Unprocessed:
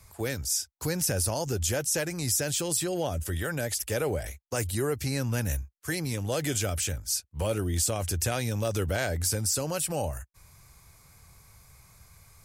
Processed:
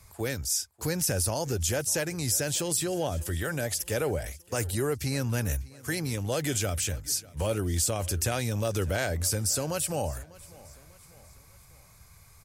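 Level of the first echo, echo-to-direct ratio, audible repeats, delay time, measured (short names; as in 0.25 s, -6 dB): -21.5 dB, -20.5 dB, 3, 0.596 s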